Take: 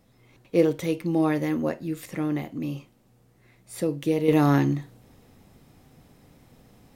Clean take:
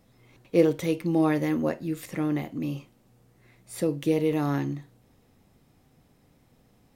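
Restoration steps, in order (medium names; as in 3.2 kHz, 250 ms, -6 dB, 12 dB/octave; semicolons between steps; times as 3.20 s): gain correction -7 dB, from 4.28 s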